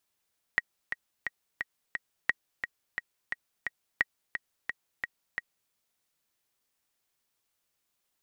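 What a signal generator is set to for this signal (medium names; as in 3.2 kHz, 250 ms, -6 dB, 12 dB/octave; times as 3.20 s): metronome 175 bpm, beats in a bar 5, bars 3, 1.9 kHz, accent 8 dB -10.5 dBFS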